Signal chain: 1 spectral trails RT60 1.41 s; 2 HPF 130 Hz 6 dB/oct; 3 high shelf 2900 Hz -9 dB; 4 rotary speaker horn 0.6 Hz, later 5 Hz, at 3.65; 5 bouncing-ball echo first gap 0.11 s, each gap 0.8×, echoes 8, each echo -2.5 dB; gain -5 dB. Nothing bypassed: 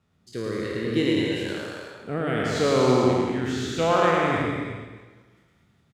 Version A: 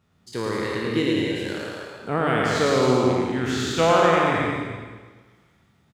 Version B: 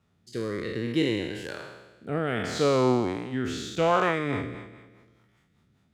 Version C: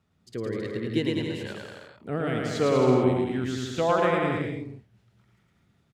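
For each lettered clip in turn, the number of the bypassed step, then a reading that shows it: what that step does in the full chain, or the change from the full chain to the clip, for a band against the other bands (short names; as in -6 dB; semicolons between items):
4, 250 Hz band -2.0 dB; 5, loudness change -3.5 LU; 1, 125 Hz band +3.0 dB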